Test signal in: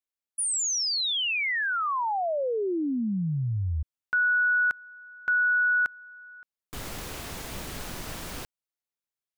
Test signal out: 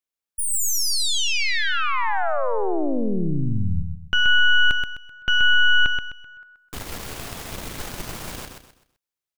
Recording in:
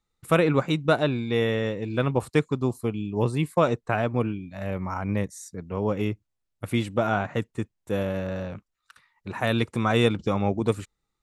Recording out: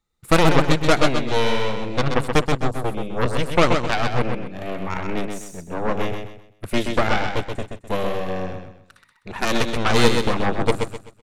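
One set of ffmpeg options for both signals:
ffmpeg -i in.wav -af "aeval=exprs='0.473*(cos(1*acos(clip(val(0)/0.473,-1,1)))-cos(1*PI/2))+0.133*(cos(8*acos(clip(val(0)/0.473,-1,1)))-cos(8*PI/2))':channel_layout=same,aecho=1:1:128|256|384|512:0.531|0.17|0.0544|0.0174,volume=1.5dB" out.wav

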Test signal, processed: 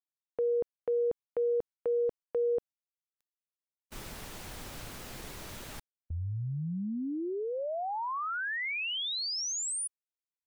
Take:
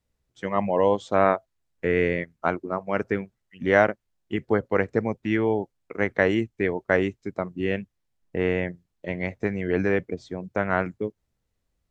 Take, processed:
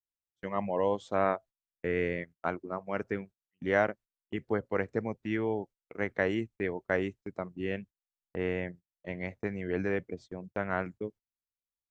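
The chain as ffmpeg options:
ffmpeg -i in.wav -af "agate=range=-25dB:threshold=-39dB:ratio=16:detection=peak,volume=-8dB" out.wav

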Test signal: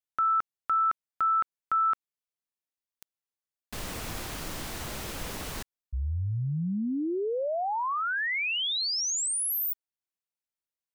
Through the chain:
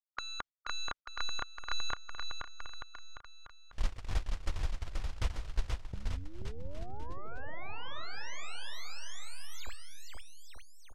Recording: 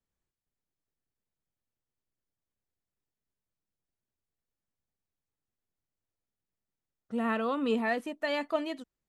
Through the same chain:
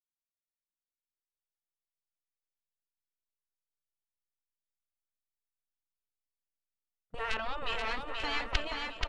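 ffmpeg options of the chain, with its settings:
ffmpeg -i in.wav -af "aeval=exprs='0.15*(cos(1*acos(clip(val(0)/0.15,-1,1)))-cos(1*PI/2))+0.00211*(cos(2*acos(clip(val(0)/0.15,-1,1)))-cos(2*PI/2))+0.0668*(cos(3*acos(clip(val(0)/0.15,-1,1)))-cos(3*PI/2))+0.0299*(cos(5*acos(clip(val(0)/0.15,-1,1)))-cos(5*PI/2))+0.00944*(cos(7*acos(clip(val(0)/0.15,-1,1)))-cos(7*PI/2))':channel_layout=same,agate=range=-30dB:threshold=-44dB:ratio=16:release=135:detection=rms,afftfilt=real='re*lt(hypot(re,im),0.0398)':imag='im*lt(hypot(re,im),0.0398)':win_size=1024:overlap=0.75,lowpass=5500,aecho=1:1:480|888|1235|1530|1780:0.631|0.398|0.251|0.158|0.1,asubboost=boost=12:cutoff=65,volume=12.5dB" out.wav

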